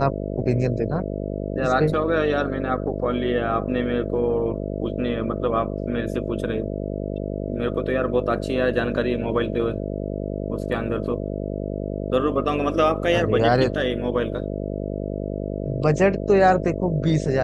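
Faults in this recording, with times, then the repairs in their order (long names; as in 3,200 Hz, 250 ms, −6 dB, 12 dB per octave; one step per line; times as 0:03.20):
mains buzz 50 Hz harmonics 13 −28 dBFS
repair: hum removal 50 Hz, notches 13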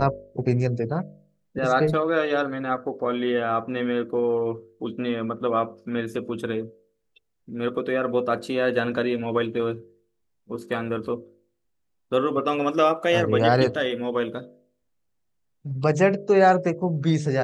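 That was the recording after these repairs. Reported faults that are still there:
none of them is left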